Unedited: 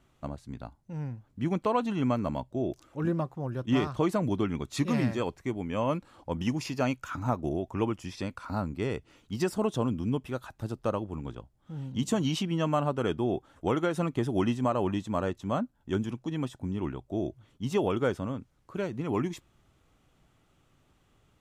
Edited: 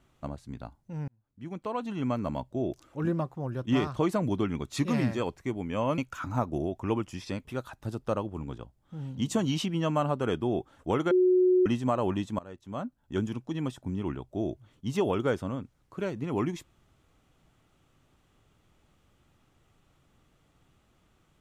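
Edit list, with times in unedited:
0:01.08–0:02.42: fade in
0:05.98–0:06.89: remove
0:08.36–0:10.22: remove
0:13.88–0:14.43: beep over 366 Hz −18.5 dBFS
0:15.16–0:16.01: fade in, from −22.5 dB

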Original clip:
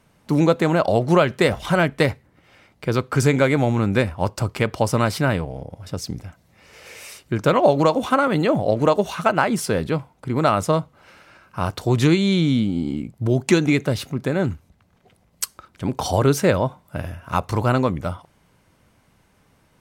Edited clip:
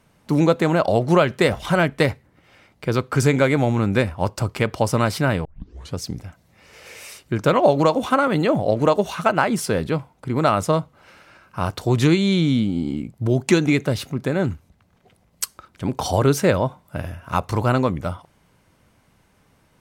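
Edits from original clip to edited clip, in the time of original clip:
0:05.45: tape start 0.52 s

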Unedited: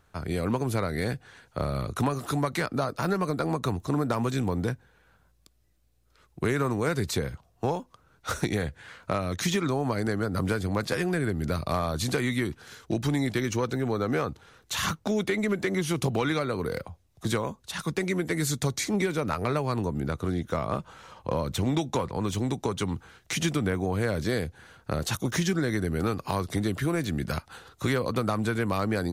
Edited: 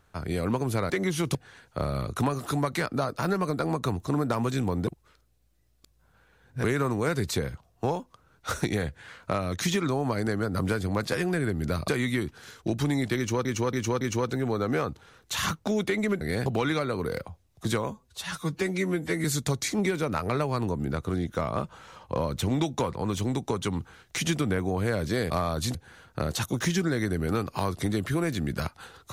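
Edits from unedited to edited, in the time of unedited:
0:00.90–0:01.15: swap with 0:15.61–0:16.06
0:04.67–0:06.44: reverse
0:11.68–0:12.12: move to 0:24.46
0:13.41–0:13.69: repeat, 4 plays
0:17.51–0:18.40: time-stretch 1.5×

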